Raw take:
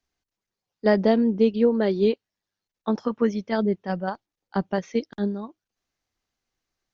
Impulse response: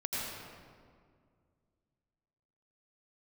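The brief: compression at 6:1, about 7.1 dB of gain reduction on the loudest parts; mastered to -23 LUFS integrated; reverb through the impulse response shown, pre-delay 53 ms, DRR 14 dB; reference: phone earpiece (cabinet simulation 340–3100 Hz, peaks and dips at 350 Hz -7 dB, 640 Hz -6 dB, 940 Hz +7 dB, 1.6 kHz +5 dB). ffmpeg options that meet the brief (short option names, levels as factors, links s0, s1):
-filter_complex "[0:a]acompressor=threshold=0.0891:ratio=6,asplit=2[s0][s1];[1:a]atrim=start_sample=2205,adelay=53[s2];[s1][s2]afir=irnorm=-1:irlink=0,volume=0.112[s3];[s0][s3]amix=inputs=2:normalize=0,highpass=340,equalizer=f=350:t=q:w=4:g=-7,equalizer=f=640:t=q:w=4:g=-6,equalizer=f=940:t=q:w=4:g=7,equalizer=f=1600:t=q:w=4:g=5,lowpass=f=3100:w=0.5412,lowpass=f=3100:w=1.3066,volume=3.16"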